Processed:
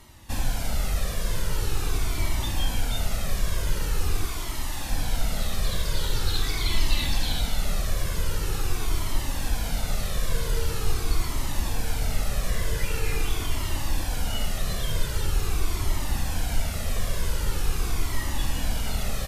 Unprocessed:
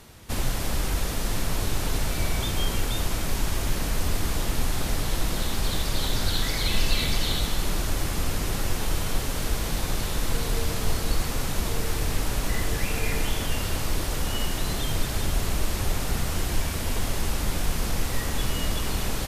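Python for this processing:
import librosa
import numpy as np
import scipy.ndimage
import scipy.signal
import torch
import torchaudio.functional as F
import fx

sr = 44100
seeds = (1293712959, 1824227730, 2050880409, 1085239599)

y = fx.low_shelf(x, sr, hz=480.0, db=-6.5, at=(4.25, 4.91))
y = fx.comb_cascade(y, sr, direction='falling', hz=0.44)
y = F.gain(torch.from_numpy(y), 2.0).numpy()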